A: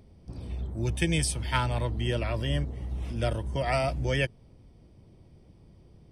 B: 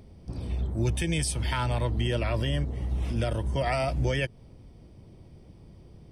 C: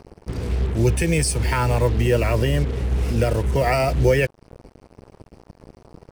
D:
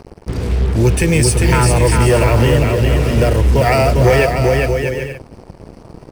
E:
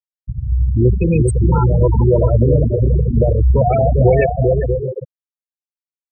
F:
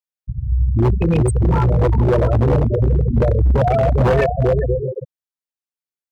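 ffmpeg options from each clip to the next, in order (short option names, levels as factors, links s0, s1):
-af "alimiter=limit=0.075:level=0:latency=1:release=139,volume=1.68"
-af "superequalizer=7b=2.24:13b=0.282,acrusher=bits=6:mix=0:aa=0.5,volume=2.37"
-filter_complex "[0:a]asplit=2[s0][s1];[s1]aecho=0:1:400|640|784|870.4|922.2:0.631|0.398|0.251|0.158|0.1[s2];[s0][s2]amix=inputs=2:normalize=0,asoftclip=type=tanh:threshold=0.316,volume=2.24"
-filter_complex "[0:a]asplit=7[s0][s1][s2][s3][s4][s5][s6];[s1]adelay=82,afreqshift=38,volume=0.15[s7];[s2]adelay=164,afreqshift=76,volume=0.0902[s8];[s3]adelay=246,afreqshift=114,volume=0.0537[s9];[s4]adelay=328,afreqshift=152,volume=0.0324[s10];[s5]adelay=410,afreqshift=190,volume=0.0195[s11];[s6]adelay=492,afreqshift=228,volume=0.0116[s12];[s0][s7][s8][s9][s10][s11][s12]amix=inputs=7:normalize=0,afftfilt=real='re*gte(hypot(re,im),0.708)':imag='im*gte(hypot(re,im),0.708)':win_size=1024:overlap=0.75"
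-af "aeval=exprs='0.398*(abs(mod(val(0)/0.398+3,4)-2)-1)':c=same,volume=0.891"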